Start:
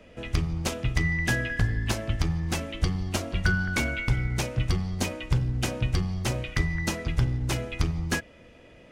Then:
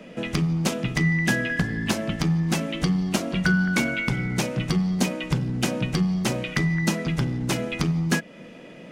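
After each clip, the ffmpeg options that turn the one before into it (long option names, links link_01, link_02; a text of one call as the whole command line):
ffmpeg -i in.wav -filter_complex "[0:a]lowshelf=frequency=120:width_type=q:width=3:gain=-13,asplit=2[link_01][link_02];[link_02]acompressor=threshold=-33dB:ratio=6,volume=2.5dB[link_03];[link_01][link_03]amix=inputs=2:normalize=0" out.wav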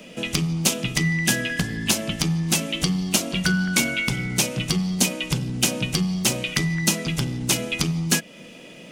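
ffmpeg -i in.wav -af "aexciter=amount=3.6:drive=2.9:freq=2500,volume=-1dB" out.wav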